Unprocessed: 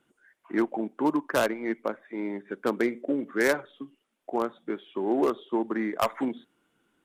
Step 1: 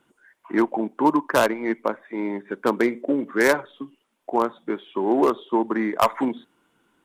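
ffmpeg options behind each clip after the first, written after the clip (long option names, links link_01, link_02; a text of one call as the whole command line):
ffmpeg -i in.wav -af "equalizer=frequency=970:width_type=o:width=0.36:gain=6.5,volume=5dB" out.wav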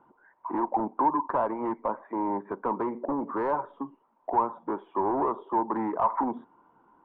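ffmpeg -i in.wav -af "acompressor=threshold=-23dB:ratio=3,asoftclip=type=tanh:threshold=-27dB,lowpass=frequency=960:width_type=q:width=4.9" out.wav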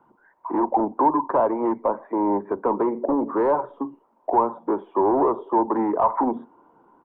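ffmpeg -i in.wav -filter_complex "[0:a]acrossover=split=320|640[link_01][link_02][link_03];[link_01]asplit=2[link_04][link_05];[link_05]adelay=39,volume=-3dB[link_06];[link_04][link_06]amix=inputs=2:normalize=0[link_07];[link_02]dynaudnorm=framelen=290:gausssize=3:maxgain=10.5dB[link_08];[link_07][link_08][link_03]amix=inputs=3:normalize=0,volume=1.5dB" out.wav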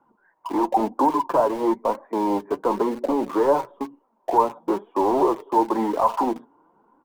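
ffmpeg -i in.wav -filter_complex "[0:a]asplit=2[link_01][link_02];[link_02]aeval=exprs='val(0)*gte(abs(val(0)),0.0422)':channel_layout=same,volume=-4dB[link_03];[link_01][link_03]amix=inputs=2:normalize=0,flanger=delay=3.4:depth=3.9:regen=48:speed=1:shape=triangular" out.wav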